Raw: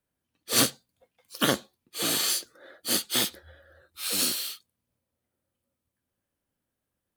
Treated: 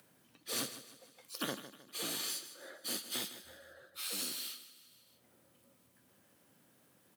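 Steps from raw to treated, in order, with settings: compression 2.5:1, threshold -41 dBFS, peak gain reduction 15.5 dB; on a send: feedback delay 156 ms, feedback 40%, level -13 dB; on the sum: upward compressor, threshold -50 dBFS; high-pass 120 Hz 24 dB/octave; trim -1 dB

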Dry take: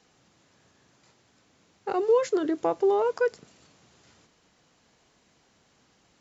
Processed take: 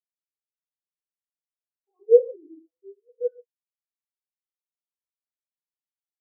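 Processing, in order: 2.59–3.09 s: band-pass filter 180 Hz, Q 1.2; gated-style reverb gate 190 ms flat, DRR -0.5 dB; spectral contrast expander 4:1; trim +5 dB

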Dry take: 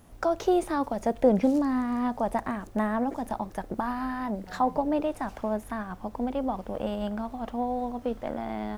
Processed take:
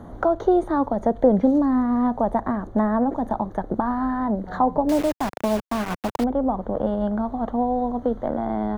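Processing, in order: boxcar filter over 17 samples; 4.89–6.24 s: word length cut 6-bit, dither none; three bands compressed up and down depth 40%; trim +7 dB

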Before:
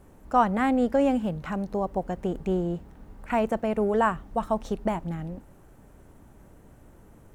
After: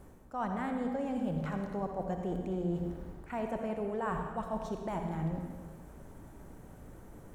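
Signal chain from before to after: peaking EQ 2.7 kHz -3 dB 0.36 oct; reverse; compression 6:1, threshold -34 dBFS, peak gain reduction 17.5 dB; reverse; reverberation RT60 1.6 s, pre-delay 53 ms, DRR 3.5 dB

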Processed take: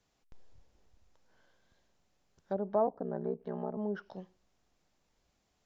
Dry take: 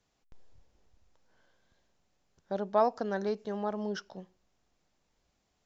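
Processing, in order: low-pass that closes with the level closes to 660 Hz, closed at -29 dBFS; 2.86–3.77 s: ring modulator 32 Hz

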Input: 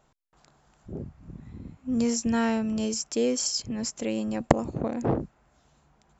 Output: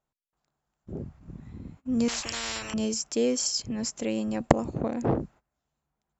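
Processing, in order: gate -49 dBFS, range -20 dB; 2.08–2.74 s: spectrum-flattening compressor 10:1

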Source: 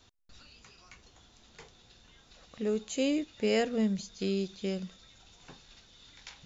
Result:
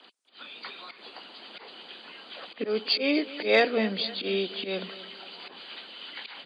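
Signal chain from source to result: knee-point frequency compression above 2.1 kHz 1.5:1; slow attack 132 ms; harmonic-percussive split percussive +8 dB; in parallel at -0.5 dB: compression, threshold -36 dBFS, peak gain reduction 13.5 dB; on the sum: Bessel high-pass 370 Hz, order 8; level rider gain up to 6 dB; saturation -6 dBFS, distortion -31 dB; on a send: feedback delay 249 ms, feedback 51%, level -16.5 dB

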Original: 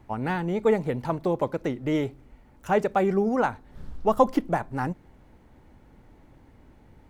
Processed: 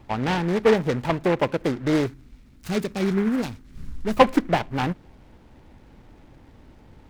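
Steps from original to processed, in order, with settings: 2.06–4.17 s: FFT filter 270 Hz 0 dB, 1.3 kHz -27 dB, 2.3 kHz +3 dB; delay time shaken by noise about 1.3 kHz, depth 0.08 ms; trim +4 dB

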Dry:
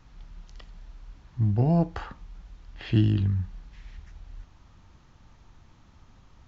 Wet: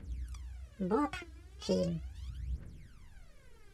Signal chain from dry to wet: speed mistake 45 rpm record played at 78 rpm; phaser 0.38 Hz, delay 3.1 ms, feedback 79%; trim -8 dB

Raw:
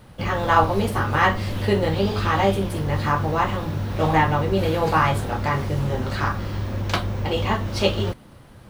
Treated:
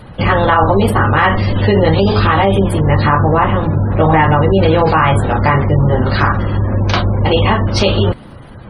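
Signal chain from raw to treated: spectral gate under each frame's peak -30 dB strong; 3.29–4.12 s: treble shelf 3.5 kHz -10.5 dB; loudness maximiser +13 dB; trim -1 dB

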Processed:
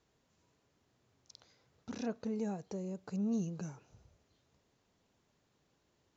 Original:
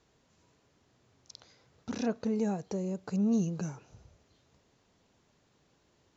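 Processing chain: trim -6.5 dB

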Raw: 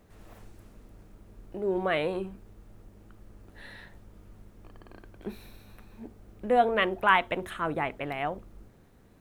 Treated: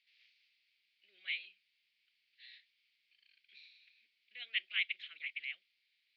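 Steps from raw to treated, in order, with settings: time stretch by phase-locked vocoder 0.67×; elliptic band-pass 2.2–4.7 kHz, stop band 50 dB; trim +1 dB

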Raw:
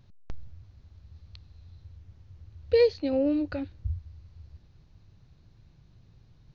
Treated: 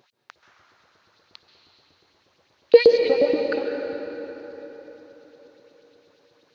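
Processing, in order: LFO high-pass saw up 8.4 Hz 330–4700 Hz; plate-style reverb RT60 4.3 s, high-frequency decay 0.65×, pre-delay 120 ms, DRR 3.5 dB; trim +6 dB

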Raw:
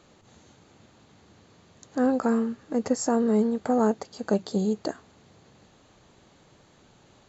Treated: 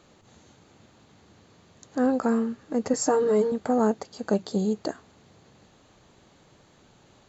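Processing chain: 2.93–3.52 s: comb 6.6 ms, depth 91%

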